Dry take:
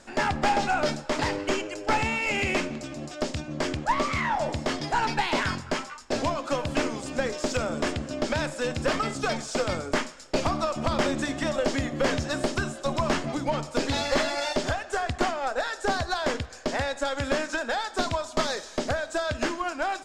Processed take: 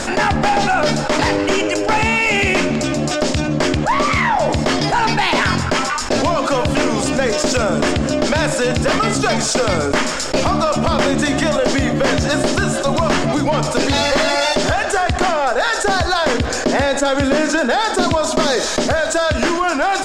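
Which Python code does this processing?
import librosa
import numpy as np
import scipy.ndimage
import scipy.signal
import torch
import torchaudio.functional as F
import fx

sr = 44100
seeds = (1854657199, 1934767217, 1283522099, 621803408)

y = fx.peak_eq(x, sr, hz=300.0, db=7.0, octaves=1.5, at=(16.38, 18.66))
y = fx.env_flatten(y, sr, amount_pct=70)
y = F.gain(torch.from_numpy(y), 5.0).numpy()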